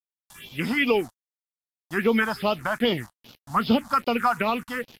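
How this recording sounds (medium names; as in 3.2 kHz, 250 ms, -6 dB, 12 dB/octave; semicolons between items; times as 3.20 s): a quantiser's noise floor 8-bit, dither none; phasing stages 4, 2.5 Hz, lowest notch 380–1700 Hz; Vorbis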